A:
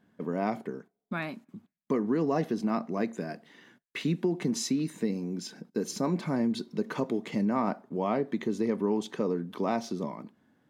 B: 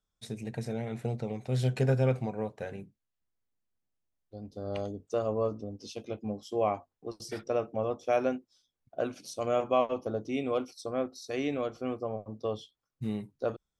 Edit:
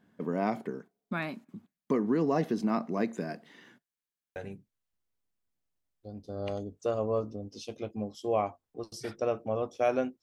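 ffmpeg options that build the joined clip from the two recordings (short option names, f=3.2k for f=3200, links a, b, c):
-filter_complex "[0:a]apad=whole_dur=10.22,atrim=end=10.22,asplit=8[a][b][c][d][e][f][g][h];[a]atrim=end=3.942[i];[b]atrim=start=3.878:end=3.942[j];[c]atrim=start=3.878:end=3.942[k];[d]atrim=start=3.878:end=3.942[l];[e]atrim=start=3.878:end=3.942[m];[f]atrim=start=3.878:end=3.942[n];[g]atrim=start=3.878:end=3.942[o];[h]atrim=start=3.878:end=3.942[p];[1:a]atrim=start=2.638:end=8.5[q];[i][j]acrossfade=d=0.004:c1=hsin:c2=hsin[r];[r][k]acrossfade=d=0.004:c1=hsin:c2=hsin[s];[s][l]acrossfade=d=0.004:c1=hsin:c2=hsin[t];[t][m]acrossfade=d=0.004:c1=hsin:c2=hsin[u];[u][n]acrossfade=d=0.004:c1=hsin:c2=hsin[v];[v][o]acrossfade=d=0.004:c1=hsin:c2=hsin[w];[w][p]acrossfade=d=0.004:c1=hsin:c2=hsin[x];[x][q]acrossfade=d=0.004:c1=hsin:c2=hsin"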